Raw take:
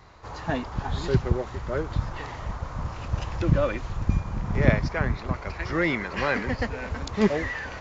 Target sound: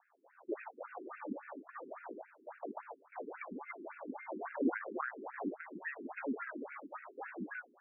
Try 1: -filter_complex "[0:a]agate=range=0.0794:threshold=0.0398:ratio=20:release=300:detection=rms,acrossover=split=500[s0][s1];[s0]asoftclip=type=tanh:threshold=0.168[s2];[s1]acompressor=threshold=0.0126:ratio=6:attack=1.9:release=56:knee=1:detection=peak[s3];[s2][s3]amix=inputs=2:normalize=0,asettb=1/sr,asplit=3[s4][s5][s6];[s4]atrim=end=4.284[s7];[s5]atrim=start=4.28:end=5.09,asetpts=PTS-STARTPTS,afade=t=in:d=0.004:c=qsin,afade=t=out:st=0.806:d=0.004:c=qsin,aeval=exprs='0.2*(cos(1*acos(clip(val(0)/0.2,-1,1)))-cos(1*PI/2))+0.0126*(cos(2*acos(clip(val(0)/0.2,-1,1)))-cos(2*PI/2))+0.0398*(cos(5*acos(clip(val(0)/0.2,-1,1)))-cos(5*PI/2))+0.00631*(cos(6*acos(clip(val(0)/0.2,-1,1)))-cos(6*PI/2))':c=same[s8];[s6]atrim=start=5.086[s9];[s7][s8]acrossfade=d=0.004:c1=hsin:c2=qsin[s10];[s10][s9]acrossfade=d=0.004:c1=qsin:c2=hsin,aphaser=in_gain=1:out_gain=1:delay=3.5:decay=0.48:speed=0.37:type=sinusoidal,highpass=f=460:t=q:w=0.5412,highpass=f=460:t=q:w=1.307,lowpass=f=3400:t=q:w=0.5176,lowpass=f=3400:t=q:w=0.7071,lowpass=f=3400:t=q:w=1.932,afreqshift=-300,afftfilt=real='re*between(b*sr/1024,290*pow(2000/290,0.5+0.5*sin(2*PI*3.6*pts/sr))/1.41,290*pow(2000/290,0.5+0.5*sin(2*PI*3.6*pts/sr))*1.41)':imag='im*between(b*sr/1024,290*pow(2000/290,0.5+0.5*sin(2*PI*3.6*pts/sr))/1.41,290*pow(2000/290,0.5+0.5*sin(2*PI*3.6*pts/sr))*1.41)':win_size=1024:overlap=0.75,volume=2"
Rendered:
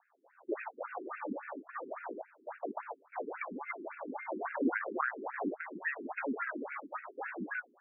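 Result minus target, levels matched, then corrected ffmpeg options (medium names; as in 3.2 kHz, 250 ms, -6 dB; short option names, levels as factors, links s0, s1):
compression: peak gain reduction -6.5 dB
-filter_complex "[0:a]agate=range=0.0794:threshold=0.0398:ratio=20:release=300:detection=rms,acrossover=split=500[s0][s1];[s0]asoftclip=type=tanh:threshold=0.168[s2];[s1]acompressor=threshold=0.00501:ratio=6:attack=1.9:release=56:knee=1:detection=peak[s3];[s2][s3]amix=inputs=2:normalize=0,asettb=1/sr,asplit=3[s4][s5][s6];[s4]atrim=end=4.284[s7];[s5]atrim=start=4.28:end=5.09,asetpts=PTS-STARTPTS,afade=t=in:d=0.004:c=qsin,afade=t=out:st=0.806:d=0.004:c=qsin,aeval=exprs='0.2*(cos(1*acos(clip(val(0)/0.2,-1,1)))-cos(1*PI/2))+0.0126*(cos(2*acos(clip(val(0)/0.2,-1,1)))-cos(2*PI/2))+0.0398*(cos(5*acos(clip(val(0)/0.2,-1,1)))-cos(5*PI/2))+0.00631*(cos(6*acos(clip(val(0)/0.2,-1,1)))-cos(6*PI/2))':c=same[s8];[s6]atrim=start=5.086[s9];[s7][s8]acrossfade=d=0.004:c1=hsin:c2=qsin[s10];[s10][s9]acrossfade=d=0.004:c1=qsin:c2=hsin,aphaser=in_gain=1:out_gain=1:delay=3.5:decay=0.48:speed=0.37:type=sinusoidal,highpass=f=460:t=q:w=0.5412,highpass=f=460:t=q:w=1.307,lowpass=f=3400:t=q:w=0.5176,lowpass=f=3400:t=q:w=0.7071,lowpass=f=3400:t=q:w=1.932,afreqshift=-300,afftfilt=real='re*between(b*sr/1024,290*pow(2000/290,0.5+0.5*sin(2*PI*3.6*pts/sr))/1.41,290*pow(2000/290,0.5+0.5*sin(2*PI*3.6*pts/sr))*1.41)':imag='im*between(b*sr/1024,290*pow(2000/290,0.5+0.5*sin(2*PI*3.6*pts/sr))/1.41,290*pow(2000/290,0.5+0.5*sin(2*PI*3.6*pts/sr))*1.41)':win_size=1024:overlap=0.75,volume=2"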